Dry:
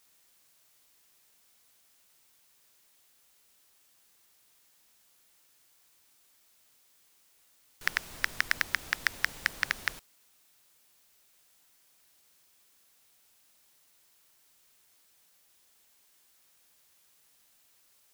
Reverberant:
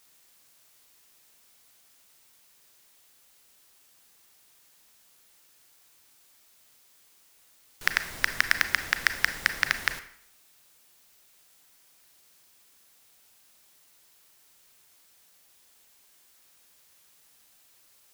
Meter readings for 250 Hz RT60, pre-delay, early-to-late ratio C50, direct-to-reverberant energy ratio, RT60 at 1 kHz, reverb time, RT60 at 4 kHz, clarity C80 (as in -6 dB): 0.65 s, 31 ms, 12.5 dB, 10.0 dB, 0.65 s, 0.65 s, 0.50 s, 15.5 dB